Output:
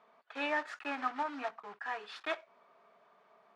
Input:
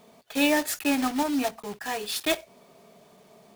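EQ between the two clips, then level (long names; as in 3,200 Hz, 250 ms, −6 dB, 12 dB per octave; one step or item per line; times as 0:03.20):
resonant band-pass 1,300 Hz, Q 2
high-frequency loss of the air 87 metres
0.0 dB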